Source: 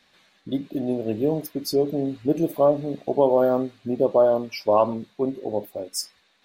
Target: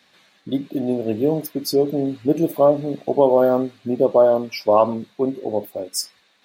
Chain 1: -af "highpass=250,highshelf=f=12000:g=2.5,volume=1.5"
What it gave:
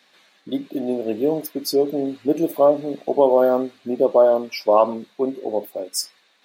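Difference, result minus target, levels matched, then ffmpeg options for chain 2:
125 Hz band -8.5 dB
-af "highpass=90,highshelf=f=12000:g=2.5,volume=1.5"

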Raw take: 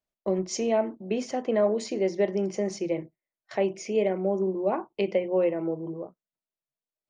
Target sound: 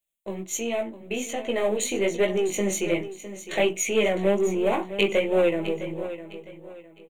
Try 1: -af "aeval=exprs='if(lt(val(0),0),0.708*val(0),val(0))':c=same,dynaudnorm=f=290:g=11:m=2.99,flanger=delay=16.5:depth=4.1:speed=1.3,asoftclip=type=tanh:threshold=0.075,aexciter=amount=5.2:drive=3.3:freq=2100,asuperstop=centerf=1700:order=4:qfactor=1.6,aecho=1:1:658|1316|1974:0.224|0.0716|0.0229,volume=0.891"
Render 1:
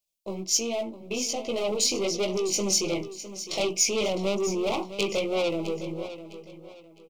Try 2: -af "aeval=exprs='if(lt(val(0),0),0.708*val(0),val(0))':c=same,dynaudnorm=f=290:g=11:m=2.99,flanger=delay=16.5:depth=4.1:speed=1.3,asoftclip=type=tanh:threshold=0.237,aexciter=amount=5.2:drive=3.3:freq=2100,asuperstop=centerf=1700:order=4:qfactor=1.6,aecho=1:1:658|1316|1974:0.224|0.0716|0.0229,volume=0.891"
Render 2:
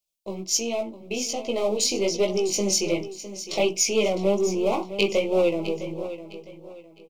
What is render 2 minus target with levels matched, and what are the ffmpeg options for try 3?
2 kHz band -4.0 dB
-af "aeval=exprs='if(lt(val(0),0),0.708*val(0),val(0))':c=same,dynaudnorm=f=290:g=11:m=2.99,flanger=delay=16.5:depth=4.1:speed=1.3,asoftclip=type=tanh:threshold=0.237,aexciter=amount=5.2:drive=3.3:freq=2100,asuperstop=centerf=5100:order=4:qfactor=1.6,aecho=1:1:658|1316|1974:0.224|0.0716|0.0229,volume=0.891"

